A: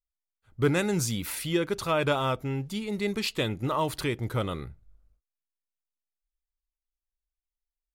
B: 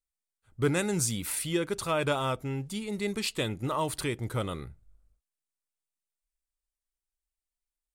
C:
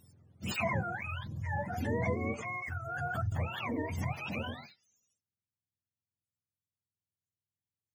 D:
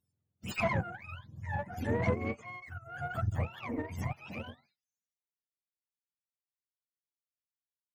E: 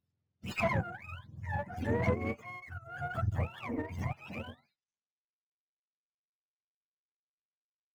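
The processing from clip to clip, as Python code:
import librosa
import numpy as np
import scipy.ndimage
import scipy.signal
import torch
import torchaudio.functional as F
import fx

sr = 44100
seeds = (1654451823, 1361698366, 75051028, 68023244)

y1 = fx.peak_eq(x, sr, hz=8700.0, db=9.0, octaves=0.57)
y1 = y1 * librosa.db_to_amplitude(-2.5)
y2 = fx.octave_mirror(y1, sr, pivot_hz=540.0)
y2 = fx.pre_swell(y2, sr, db_per_s=34.0)
y2 = y2 * librosa.db_to_amplitude(-5.0)
y3 = fx.tube_stage(y2, sr, drive_db=26.0, bias=0.4)
y3 = fx.upward_expand(y3, sr, threshold_db=-50.0, expansion=2.5)
y3 = y3 * librosa.db_to_amplitude(7.0)
y4 = scipy.signal.medfilt(y3, 5)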